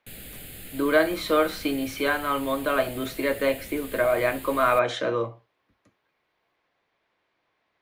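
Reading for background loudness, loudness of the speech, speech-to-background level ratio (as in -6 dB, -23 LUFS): -40.5 LUFS, -25.0 LUFS, 15.5 dB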